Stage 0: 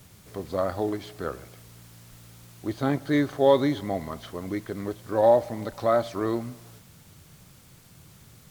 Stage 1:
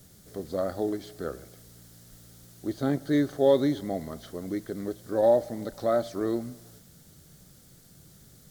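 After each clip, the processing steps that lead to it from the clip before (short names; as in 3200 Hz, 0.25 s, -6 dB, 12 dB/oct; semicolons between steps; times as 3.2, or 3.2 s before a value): fifteen-band EQ 100 Hz -7 dB, 1000 Hz -11 dB, 2500 Hz -11 dB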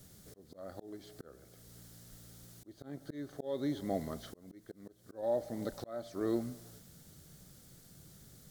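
auto swell 0.553 s; gain -3 dB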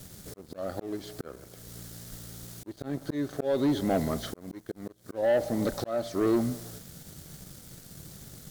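sample leveller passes 2; gain +4.5 dB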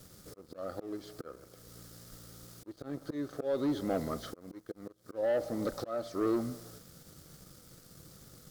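thirty-one-band EQ 315 Hz +4 dB, 500 Hz +7 dB, 1250 Hz +9 dB, 5000 Hz +4 dB; gain -8.5 dB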